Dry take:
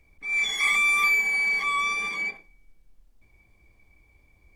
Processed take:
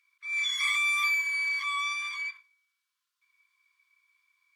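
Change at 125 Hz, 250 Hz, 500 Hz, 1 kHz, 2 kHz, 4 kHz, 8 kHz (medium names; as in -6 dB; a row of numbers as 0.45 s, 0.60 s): no reading, under -40 dB, under -40 dB, -6.0 dB, -5.5 dB, -0.5 dB, -4.0 dB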